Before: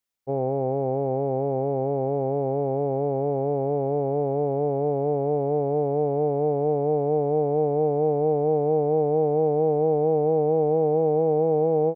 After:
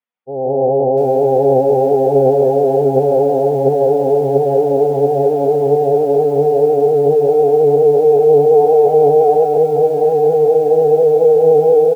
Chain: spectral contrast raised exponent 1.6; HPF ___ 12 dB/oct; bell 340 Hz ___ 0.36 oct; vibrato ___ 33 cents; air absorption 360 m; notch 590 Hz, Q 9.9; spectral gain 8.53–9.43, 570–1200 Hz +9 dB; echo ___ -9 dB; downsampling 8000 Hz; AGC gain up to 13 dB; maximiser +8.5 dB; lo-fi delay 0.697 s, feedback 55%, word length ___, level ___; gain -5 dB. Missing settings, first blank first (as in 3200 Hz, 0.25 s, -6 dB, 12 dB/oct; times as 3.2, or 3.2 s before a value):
230 Hz, -12 dB, 10 Hz, 0.153 s, 6-bit, -6.5 dB